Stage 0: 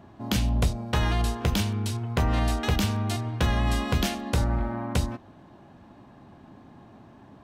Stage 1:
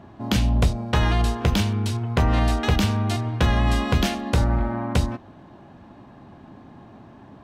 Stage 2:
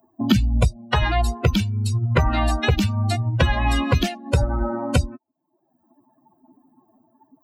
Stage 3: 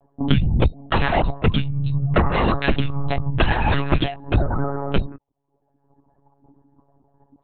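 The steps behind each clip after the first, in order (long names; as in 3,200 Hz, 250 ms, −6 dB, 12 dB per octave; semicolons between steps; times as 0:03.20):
high-shelf EQ 7,400 Hz −8 dB; level +4.5 dB
spectral dynamics exaggerated over time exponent 3; multiband upward and downward compressor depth 100%; level +8 dB
one-pitch LPC vocoder at 8 kHz 140 Hz; level +1 dB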